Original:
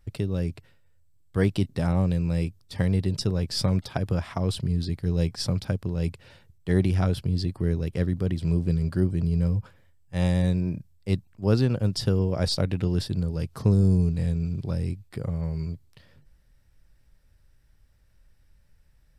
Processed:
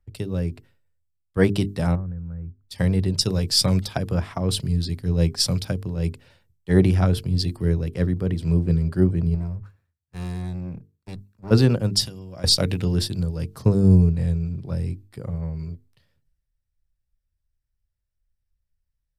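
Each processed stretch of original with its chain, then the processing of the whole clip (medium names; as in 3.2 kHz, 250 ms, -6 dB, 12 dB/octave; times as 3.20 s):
1.95–2.63 s: four-pole ladder low-pass 1.6 kHz, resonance 70% + peaking EQ 100 Hz +15 dB 2.6 oct + compression 10:1, threshold -27 dBFS
9.34–11.51 s: comb filter that takes the minimum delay 0.71 ms + compression 3:1, threshold -27 dBFS + band-stop 3 kHz, Q 7.8
12.02–12.44 s: compression 5:1, threshold -29 dBFS + comb of notches 440 Hz
whole clip: treble shelf 9.4 kHz +5.5 dB; hum notches 50/100/150/200/250/300/350/400/450 Hz; three bands expanded up and down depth 70%; trim +3.5 dB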